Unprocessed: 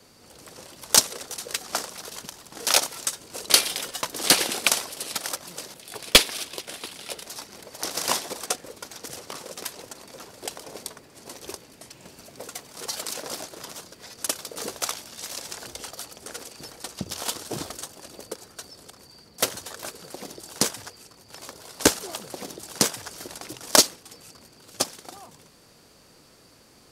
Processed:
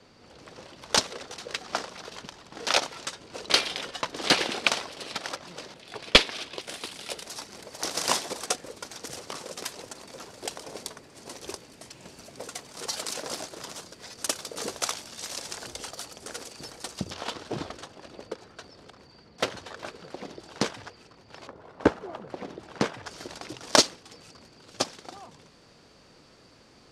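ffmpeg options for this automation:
-af "asetnsamples=n=441:p=0,asendcmd='6.61 lowpass f 9000;17.11 lowpass f 3400;21.47 lowpass f 1400;22.29 lowpass f 2300;23.06 lowpass f 5300',lowpass=4.1k"

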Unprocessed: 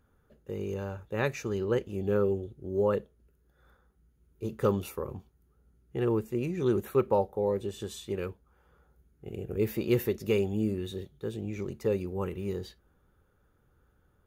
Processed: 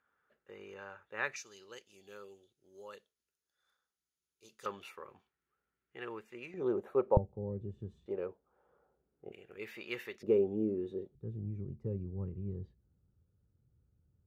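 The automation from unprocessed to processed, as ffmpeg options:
-af "asetnsamples=n=441:p=0,asendcmd='1.36 bandpass f 5400;4.66 bandpass f 2000;6.54 bandpass f 650;7.17 bandpass f 120;8.06 bandpass f 610;9.32 bandpass f 2100;10.23 bandpass f 400;11.15 bandpass f 110',bandpass=f=1.7k:t=q:w=1.4:csg=0"

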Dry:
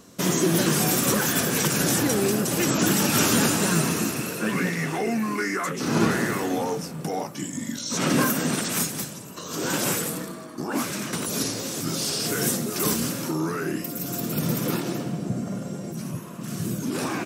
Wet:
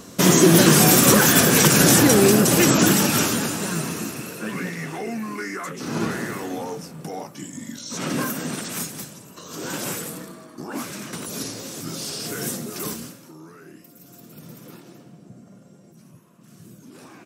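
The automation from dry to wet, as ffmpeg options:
-af "volume=8dB,afade=t=out:st=2.5:d=0.9:silence=0.251189,afade=t=out:st=12.75:d=0.45:silence=0.223872"

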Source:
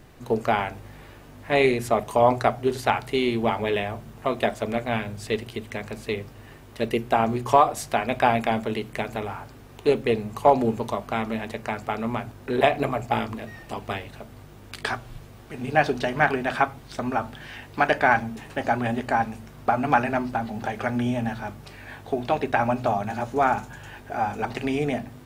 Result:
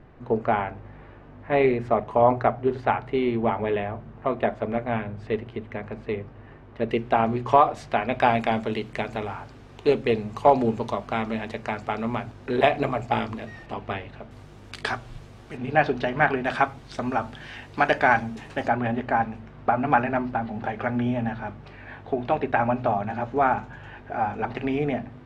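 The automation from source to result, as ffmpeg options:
-af "asetnsamples=n=441:p=0,asendcmd='6.89 lowpass f 3200;8.2 lowpass f 5700;13.66 lowpass f 3000;14.31 lowpass f 7400;15.57 lowpass f 3300;16.45 lowpass f 7000;18.68 lowpass f 2600',lowpass=1.8k"

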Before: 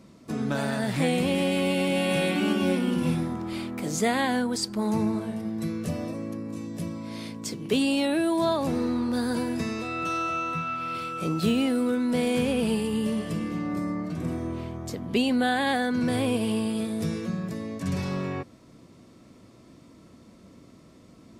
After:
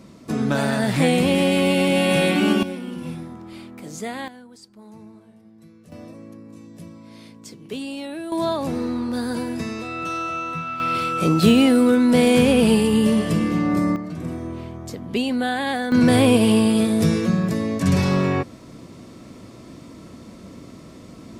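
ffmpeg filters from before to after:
-af "asetnsamples=n=441:p=0,asendcmd='2.63 volume volume -6dB;4.28 volume volume -18dB;5.92 volume volume -7dB;8.32 volume volume 1.5dB;10.8 volume volume 9.5dB;13.96 volume volume 1dB;15.92 volume volume 10.5dB',volume=6.5dB"

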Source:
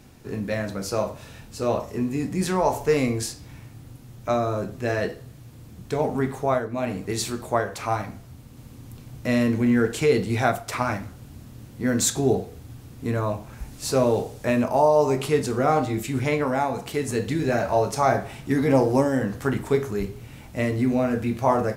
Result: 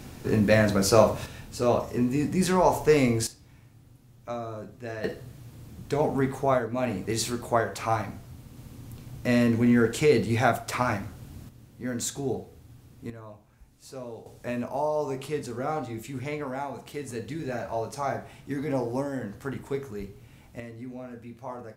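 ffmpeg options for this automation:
-af "asetnsamples=n=441:p=0,asendcmd='1.26 volume volume 0.5dB;3.27 volume volume -11dB;5.04 volume volume -1dB;11.49 volume volume -9dB;13.1 volume volume -19dB;14.26 volume volume -9.5dB;20.6 volume volume -17.5dB',volume=7dB"

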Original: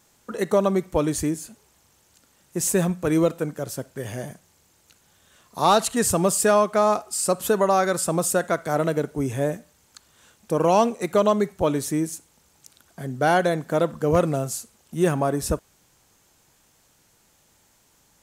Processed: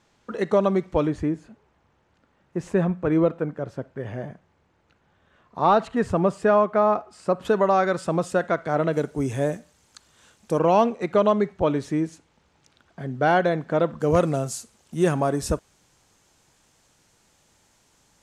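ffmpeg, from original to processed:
-af "asetnsamples=n=441:p=0,asendcmd='1.07 lowpass f 1900;7.45 lowpass f 3300;8.93 lowpass f 8800;10.59 lowpass f 3300;14 lowpass f 8600',lowpass=4k"

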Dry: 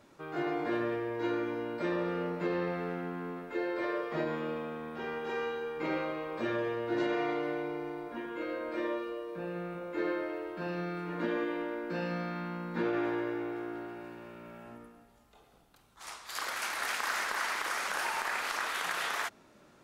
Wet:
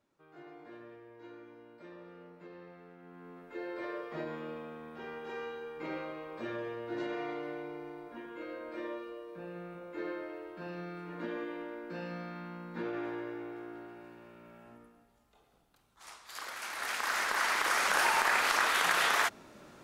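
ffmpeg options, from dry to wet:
-af "volume=6dB,afade=t=in:st=2.98:d=0.74:silence=0.237137,afade=t=in:st=16.62:d=1.36:silence=0.251189"

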